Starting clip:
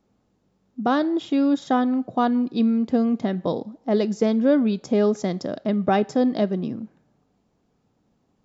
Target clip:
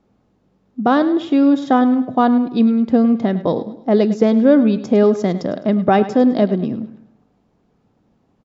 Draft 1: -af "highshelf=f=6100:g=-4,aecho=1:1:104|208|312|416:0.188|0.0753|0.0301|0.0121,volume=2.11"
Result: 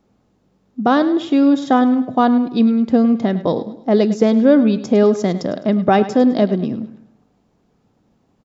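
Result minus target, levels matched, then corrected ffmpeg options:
8 kHz band +5.0 dB
-af "highshelf=f=6100:g=-14,aecho=1:1:104|208|312|416:0.188|0.0753|0.0301|0.0121,volume=2.11"

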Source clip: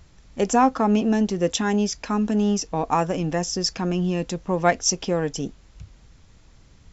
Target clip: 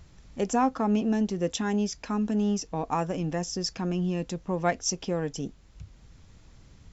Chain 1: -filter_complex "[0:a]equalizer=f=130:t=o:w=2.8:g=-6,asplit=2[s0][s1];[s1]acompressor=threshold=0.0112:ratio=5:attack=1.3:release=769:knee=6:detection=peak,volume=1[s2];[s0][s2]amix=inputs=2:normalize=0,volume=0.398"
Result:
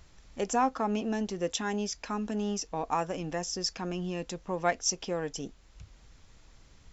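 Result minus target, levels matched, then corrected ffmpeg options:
125 Hz band -4.5 dB
-filter_complex "[0:a]equalizer=f=130:t=o:w=2.8:g=3,asplit=2[s0][s1];[s1]acompressor=threshold=0.0112:ratio=5:attack=1.3:release=769:knee=6:detection=peak,volume=1[s2];[s0][s2]amix=inputs=2:normalize=0,volume=0.398"

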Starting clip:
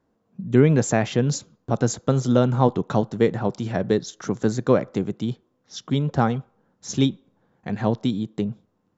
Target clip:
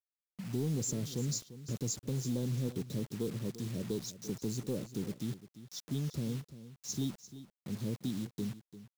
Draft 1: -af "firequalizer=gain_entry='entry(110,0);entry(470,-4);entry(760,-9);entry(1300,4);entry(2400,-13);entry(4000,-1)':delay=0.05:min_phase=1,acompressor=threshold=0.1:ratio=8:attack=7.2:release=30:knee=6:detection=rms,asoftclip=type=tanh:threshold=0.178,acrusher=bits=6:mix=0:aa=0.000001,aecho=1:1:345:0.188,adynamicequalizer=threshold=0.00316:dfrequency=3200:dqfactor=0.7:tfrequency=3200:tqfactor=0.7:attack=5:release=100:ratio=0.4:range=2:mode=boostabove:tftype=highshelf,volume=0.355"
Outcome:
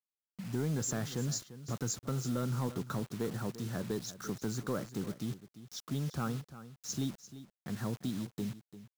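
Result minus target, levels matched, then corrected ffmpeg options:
1 kHz band +12.0 dB
-af "firequalizer=gain_entry='entry(110,0);entry(470,-4);entry(760,-9);entry(1300,4);entry(2400,-13);entry(4000,-1)':delay=0.05:min_phase=1,acompressor=threshold=0.1:ratio=8:attack=7.2:release=30:knee=6:detection=rms,asuperstop=centerf=1300:order=8:qfactor=0.5,asoftclip=type=tanh:threshold=0.178,acrusher=bits=6:mix=0:aa=0.000001,aecho=1:1:345:0.188,adynamicequalizer=threshold=0.00316:dfrequency=3200:dqfactor=0.7:tfrequency=3200:tqfactor=0.7:attack=5:release=100:ratio=0.4:range=2:mode=boostabove:tftype=highshelf,volume=0.355"

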